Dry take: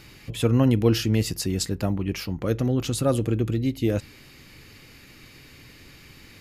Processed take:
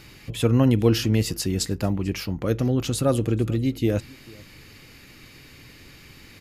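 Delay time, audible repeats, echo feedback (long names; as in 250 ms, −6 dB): 442 ms, 1, repeats not evenly spaced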